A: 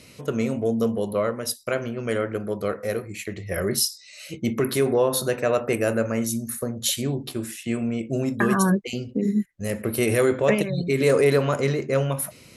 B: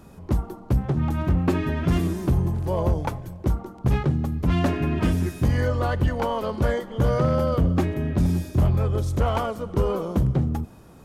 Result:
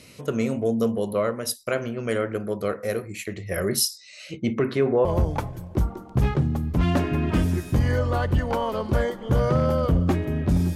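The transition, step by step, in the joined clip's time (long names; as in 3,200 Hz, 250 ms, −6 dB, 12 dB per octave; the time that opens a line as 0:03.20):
A
0:03.99–0:05.05: low-pass filter 9,300 Hz → 1,600 Hz
0:05.05: continue with B from 0:02.74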